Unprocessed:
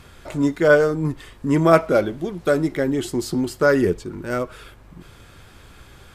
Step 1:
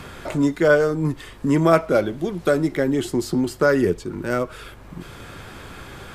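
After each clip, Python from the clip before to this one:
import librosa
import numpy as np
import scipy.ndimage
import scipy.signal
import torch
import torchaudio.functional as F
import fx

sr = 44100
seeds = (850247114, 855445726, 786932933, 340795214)

y = fx.band_squash(x, sr, depth_pct=40)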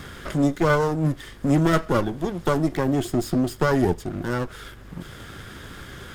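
y = fx.lower_of_two(x, sr, delay_ms=0.6)
y = fx.dynamic_eq(y, sr, hz=2100.0, q=0.71, threshold_db=-35.0, ratio=4.0, max_db=-5)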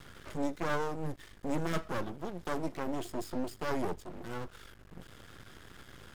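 y = np.maximum(x, 0.0)
y = F.gain(torch.from_numpy(y), -9.0).numpy()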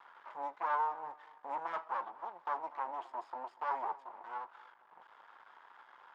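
y = fx.ladder_bandpass(x, sr, hz=1000.0, resonance_pct=70)
y = fx.echo_feedback(y, sr, ms=241, feedback_pct=32, wet_db=-20)
y = F.gain(torch.from_numpy(y), 8.5).numpy()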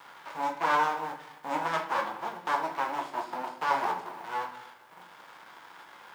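y = fx.envelope_flatten(x, sr, power=0.6)
y = fx.room_shoebox(y, sr, seeds[0], volume_m3=120.0, walls='mixed', distance_m=0.64)
y = F.gain(torch.from_numpy(y), 6.5).numpy()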